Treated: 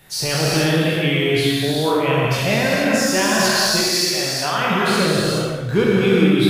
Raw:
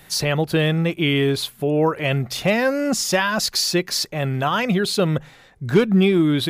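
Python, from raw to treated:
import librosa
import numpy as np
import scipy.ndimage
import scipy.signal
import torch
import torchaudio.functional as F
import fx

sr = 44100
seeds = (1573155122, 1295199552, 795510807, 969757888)

y = fx.spec_trails(x, sr, decay_s=0.77)
y = fx.highpass(y, sr, hz=370.0, slope=6, at=(3.79, 4.62))
y = fx.rev_gated(y, sr, seeds[0], gate_ms=470, shape='flat', drr_db=-5.0)
y = F.gain(torch.from_numpy(y), -5.0).numpy()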